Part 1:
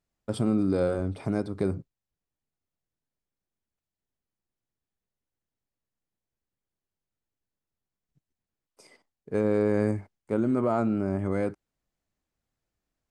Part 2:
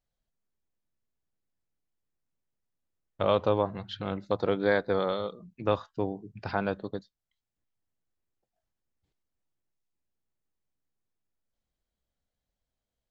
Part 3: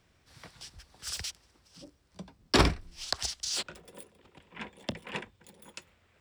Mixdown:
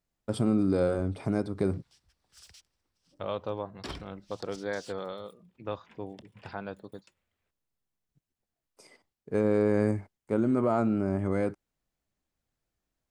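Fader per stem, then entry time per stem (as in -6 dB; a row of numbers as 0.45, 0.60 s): -0.5, -9.0, -17.5 dB; 0.00, 0.00, 1.30 s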